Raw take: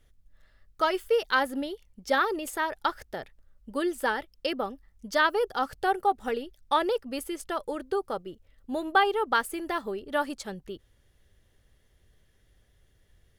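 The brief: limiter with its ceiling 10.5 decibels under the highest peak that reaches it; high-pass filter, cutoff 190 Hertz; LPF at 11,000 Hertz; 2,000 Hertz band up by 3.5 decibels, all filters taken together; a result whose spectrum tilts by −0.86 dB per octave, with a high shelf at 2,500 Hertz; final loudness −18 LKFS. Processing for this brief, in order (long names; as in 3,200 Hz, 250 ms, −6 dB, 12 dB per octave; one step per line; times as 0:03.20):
high-pass filter 190 Hz
low-pass filter 11,000 Hz
parametric band 2,000 Hz +8.5 dB
high-shelf EQ 2,500 Hz −8.5 dB
level +13 dB
brickwall limiter −5 dBFS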